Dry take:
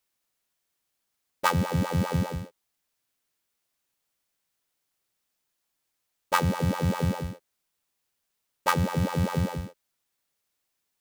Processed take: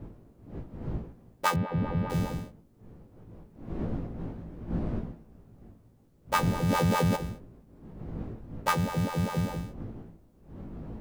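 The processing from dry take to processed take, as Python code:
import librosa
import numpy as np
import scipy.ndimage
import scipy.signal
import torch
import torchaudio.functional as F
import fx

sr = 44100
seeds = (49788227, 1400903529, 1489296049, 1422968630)

y = fx.dmg_wind(x, sr, seeds[0], corner_hz=220.0, level_db=-37.0)
y = fx.air_absorb(y, sr, metres=450.0, at=(1.54, 2.1))
y = fx.doubler(y, sr, ms=18.0, db=-5.5)
y = fx.env_flatten(y, sr, amount_pct=70, at=(6.68, 7.15), fade=0.02)
y = F.gain(torch.from_numpy(y), -3.5).numpy()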